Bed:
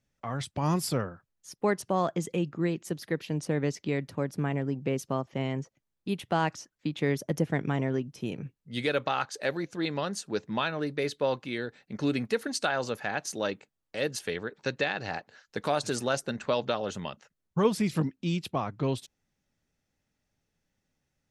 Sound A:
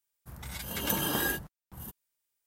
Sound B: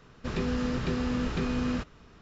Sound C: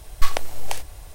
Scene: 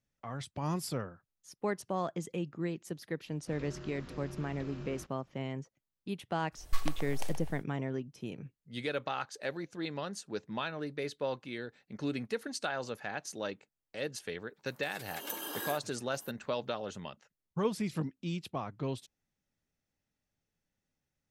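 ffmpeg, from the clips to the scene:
-filter_complex "[0:a]volume=-7dB[a];[2:a]aeval=exprs='val(0)*sin(2*PI*110*n/s)':c=same[b];[3:a]asplit=2[c][d];[d]adelay=126,lowpass=f=1.9k:p=1,volume=-5dB,asplit=2[e][f];[f]adelay=126,lowpass=f=1.9k:p=1,volume=0.49,asplit=2[g][h];[h]adelay=126,lowpass=f=1.9k:p=1,volume=0.49,asplit=2[i][j];[j]adelay=126,lowpass=f=1.9k:p=1,volume=0.49,asplit=2[k][l];[l]adelay=126,lowpass=f=1.9k:p=1,volume=0.49,asplit=2[m][n];[n]adelay=126,lowpass=f=1.9k:p=1,volume=0.49[o];[c][e][g][i][k][m][o]amix=inputs=7:normalize=0[p];[1:a]highpass=f=290:w=0.5412,highpass=f=290:w=1.3066[q];[b]atrim=end=2.21,asetpts=PTS-STARTPTS,volume=-13.5dB,afade=t=in:d=0.004:c=hsin,afade=t=out:st=2.206:d=0.004:c=hsin,adelay=3230[r];[p]atrim=end=1.14,asetpts=PTS-STARTPTS,volume=-13dB,afade=t=in:d=0.1,afade=t=out:st=1.04:d=0.1,adelay=6510[s];[q]atrim=end=2.46,asetpts=PTS-STARTPTS,volume=-9dB,afade=t=in:d=0.004:c=hsin,afade=t=out:st=2.456:d=0.004:c=hsin,adelay=14400[t];[a][r][s][t]amix=inputs=4:normalize=0"

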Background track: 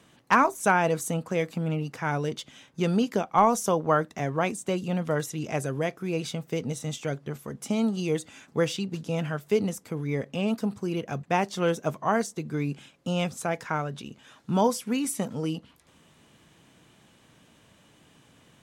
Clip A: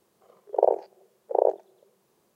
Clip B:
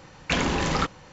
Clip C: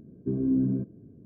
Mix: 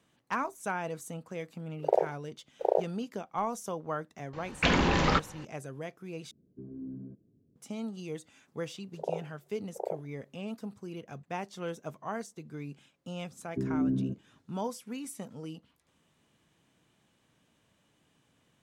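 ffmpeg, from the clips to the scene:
-filter_complex "[1:a]asplit=2[a][b];[3:a]asplit=2[c][d];[0:a]volume=-12dB[e];[a]aeval=exprs='sgn(val(0))*max(abs(val(0))-0.00335,0)':c=same[f];[2:a]lowpass=4.9k[g];[d]agate=range=-33dB:threshold=-41dB:ratio=3:release=100:detection=peak[h];[e]asplit=2[i][j];[i]atrim=end=6.314[k];[c]atrim=end=1.25,asetpts=PTS-STARTPTS,volume=-17dB[l];[j]atrim=start=7.556[m];[f]atrim=end=2.35,asetpts=PTS-STARTPTS,volume=-5dB,afade=t=in:d=0.004:c=hsin,afade=t=out:st=2.346:d=0.004:c=hsin,adelay=1300[n];[g]atrim=end=1.12,asetpts=PTS-STARTPTS,volume=-0.5dB,afade=t=in:d=0.004:c=hsin,afade=t=out:st=1.116:d=0.004:c=hsin,adelay=190953S[o];[b]atrim=end=2.35,asetpts=PTS-STARTPTS,volume=-14dB,afade=t=in:d=0.004:c=hsin,afade=t=out:st=2.346:d=0.004:c=hsin,adelay=8450[p];[h]atrim=end=1.25,asetpts=PTS-STARTPTS,volume=-4dB,afade=t=in:d=0.004:c=hsin,afade=t=out:st=1.246:d=0.004:c=hsin,adelay=13300[q];[k][l]acrossfade=d=0.004:c1=hsin:c2=hsin[r];[r][m]acrossfade=d=0.004:c1=hsin:c2=hsin[s];[s][n][o][p][q]amix=inputs=5:normalize=0"

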